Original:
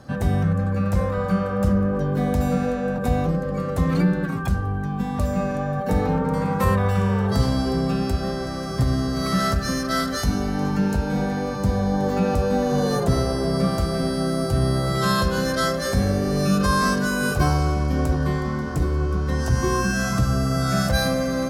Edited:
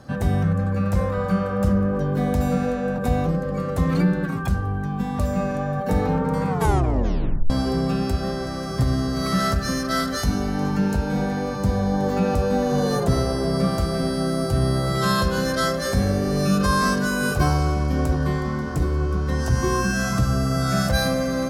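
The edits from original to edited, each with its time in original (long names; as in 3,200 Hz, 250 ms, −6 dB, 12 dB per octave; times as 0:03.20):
0:06.48: tape stop 1.02 s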